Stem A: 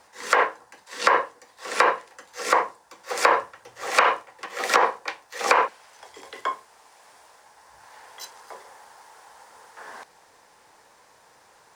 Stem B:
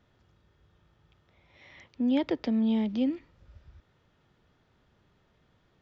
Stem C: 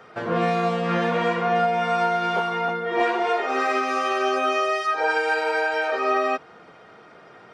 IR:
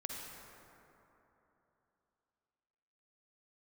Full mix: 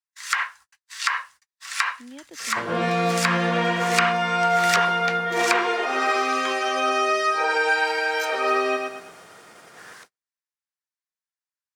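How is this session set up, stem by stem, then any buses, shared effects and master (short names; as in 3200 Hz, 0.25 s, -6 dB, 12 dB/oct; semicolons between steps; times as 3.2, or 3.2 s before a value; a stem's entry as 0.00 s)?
-4.5 dB, 0.00 s, no send, no echo send, HPF 1200 Hz 24 dB/oct
-17.0 dB, 0.00 s, no send, no echo send, dry
-3.0 dB, 2.40 s, no send, echo send -4.5 dB, dry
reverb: off
echo: feedback echo 0.115 s, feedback 38%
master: high shelf 2100 Hz +8 dB; gate -47 dBFS, range -40 dB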